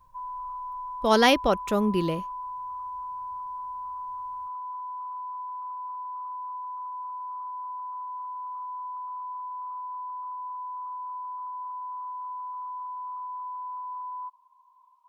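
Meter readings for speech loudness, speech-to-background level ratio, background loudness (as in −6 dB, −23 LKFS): −23.5 LKFS, 12.5 dB, −36.0 LKFS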